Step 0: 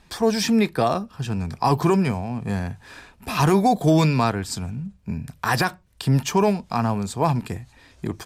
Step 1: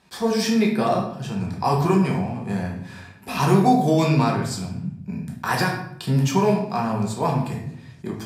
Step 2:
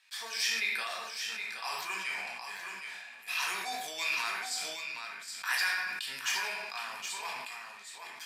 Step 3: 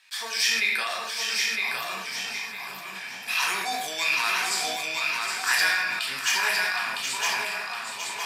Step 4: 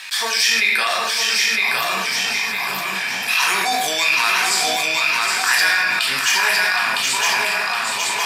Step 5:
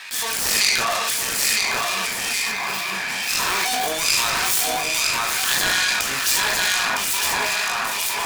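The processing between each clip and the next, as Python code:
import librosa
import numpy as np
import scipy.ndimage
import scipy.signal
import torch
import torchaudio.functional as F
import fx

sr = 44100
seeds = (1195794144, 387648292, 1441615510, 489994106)

y1 = scipy.signal.sosfilt(scipy.signal.butter(2, 110.0, 'highpass', fs=sr, output='sos'), x)
y1 = fx.room_shoebox(y1, sr, seeds[0], volume_m3=170.0, walls='mixed', distance_m=1.1)
y1 = fx.attack_slew(y1, sr, db_per_s=600.0)
y1 = F.gain(torch.from_numpy(y1), -4.0).numpy()
y2 = fx.highpass_res(y1, sr, hz=2100.0, q=1.6)
y2 = y2 + 10.0 ** (-7.0 / 20.0) * np.pad(y2, (int(769 * sr / 1000.0), 0))[:len(y2)]
y2 = fx.sustainer(y2, sr, db_per_s=30.0)
y2 = F.gain(torch.from_numpy(y2), -5.0).numpy()
y3 = fx.spec_box(y2, sr, start_s=1.5, length_s=1.46, low_hz=330.0, high_hz=11000.0, gain_db=-9)
y3 = fx.low_shelf(y3, sr, hz=240.0, db=4.0)
y3 = fx.echo_feedback(y3, sr, ms=959, feedback_pct=29, wet_db=-3.5)
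y3 = F.gain(torch.from_numpy(y3), 7.5).numpy()
y4 = fx.env_flatten(y3, sr, amount_pct=50)
y4 = F.gain(torch.from_numpy(y4), 5.5).numpy()
y5 = fx.self_delay(y4, sr, depth_ms=0.25)
y5 = fx.transient(y5, sr, attack_db=-3, sustain_db=11)
y5 = fx.harmonic_tremolo(y5, sr, hz=2.3, depth_pct=50, crossover_hz=1900.0)
y5 = F.gain(torch.from_numpy(y5), 1.0).numpy()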